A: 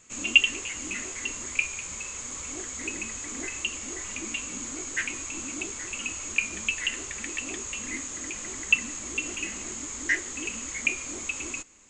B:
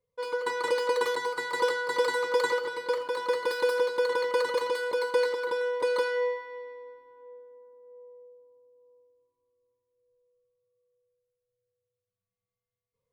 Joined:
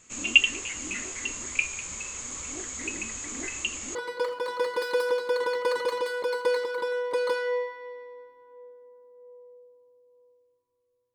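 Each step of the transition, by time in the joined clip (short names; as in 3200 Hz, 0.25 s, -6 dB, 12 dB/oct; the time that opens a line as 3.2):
A
3.95 switch to B from 2.64 s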